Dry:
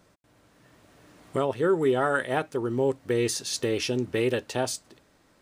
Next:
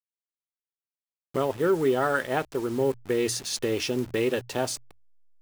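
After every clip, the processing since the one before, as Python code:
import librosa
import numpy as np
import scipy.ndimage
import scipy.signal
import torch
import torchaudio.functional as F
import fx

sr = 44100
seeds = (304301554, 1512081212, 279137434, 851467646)

y = fx.delta_hold(x, sr, step_db=-38.5)
y = fx.hum_notches(y, sr, base_hz=60, count=2)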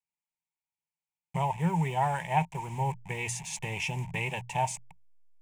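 y = fx.curve_eq(x, sr, hz=(110.0, 170.0, 260.0, 520.0, 920.0, 1300.0, 2300.0, 4400.0, 7400.0, 16000.0), db=(0, 11, -22, -15, 11, -21, 7, -17, 0, -18))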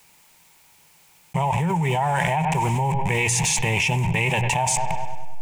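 y = fx.echo_wet_lowpass(x, sr, ms=99, feedback_pct=53, hz=2800.0, wet_db=-18.0)
y = fx.env_flatten(y, sr, amount_pct=100)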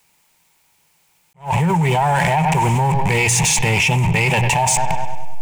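y = fx.leveller(x, sr, passes=2)
y = fx.attack_slew(y, sr, db_per_s=250.0)
y = F.gain(torch.from_numpy(y), -1.0).numpy()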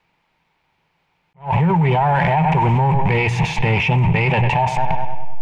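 y = fx.air_absorb(x, sr, metres=340.0)
y = F.gain(torch.from_numpy(y), 1.5).numpy()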